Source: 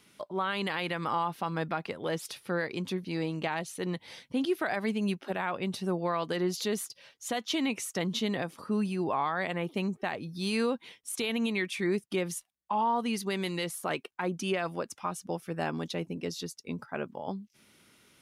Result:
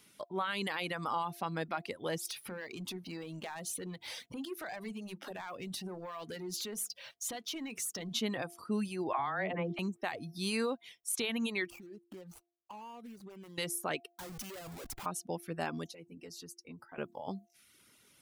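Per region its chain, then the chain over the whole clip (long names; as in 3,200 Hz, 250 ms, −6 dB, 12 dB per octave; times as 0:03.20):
0:02.27–0:08.12: downward compressor 3 to 1, threshold −44 dBFS + leveller curve on the samples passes 2 + mains-hum notches 50/100/150/200/250/300/350/400/450 Hz
0:09.13–0:09.79: low-pass filter 2,100 Hz + all-pass dispersion lows, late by 62 ms, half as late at 390 Hz + multiband upward and downward compressor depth 100%
0:11.70–0:13.58: running median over 25 samples + downward compressor, threshold −42 dBFS
0:14.15–0:15.06: high-shelf EQ 11,000 Hz +10.5 dB + downward compressor 16 to 1, threshold −35 dBFS + comparator with hysteresis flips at −51.5 dBFS
0:15.86–0:16.98: parametric band 3,500 Hz −9.5 dB 0.22 octaves + downward compressor 2 to 1, threshold −46 dBFS + notch comb filter 200 Hz
whole clip: high-shelf EQ 5,900 Hz +8 dB; reverb reduction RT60 0.75 s; hum removal 345.8 Hz, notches 2; level −3.5 dB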